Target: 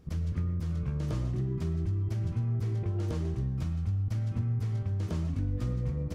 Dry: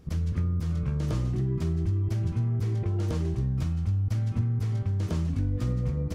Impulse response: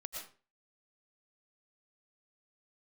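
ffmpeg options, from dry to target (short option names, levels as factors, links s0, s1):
-filter_complex "[0:a]asplit=2[s0][s1];[1:a]atrim=start_sample=2205,highshelf=f=5300:g=-10[s2];[s1][s2]afir=irnorm=-1:irlink=0,volume=0.668[s3];[s0][s3]amix=inputs=2:normalize=0,volume=0.473"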